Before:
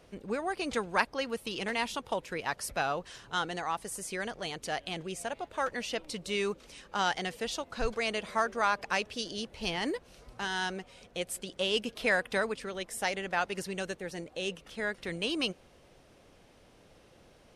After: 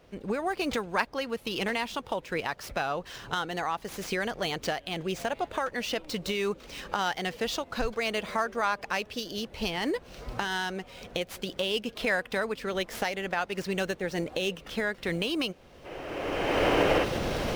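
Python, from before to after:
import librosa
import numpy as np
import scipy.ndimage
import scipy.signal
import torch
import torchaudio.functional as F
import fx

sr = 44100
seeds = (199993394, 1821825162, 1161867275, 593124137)

y = scipy.signal.medfilt(x, 5)
y = fx.recorder_agc(y, sr, target_db=-20.5, rise_db_per_s=25.0, max_gain_db=30)
y = fx.spec_box(y, sr, start_s=15.85, length_s=1.19, low_hz=260.0, high_hz=3200.0, gain_db=9)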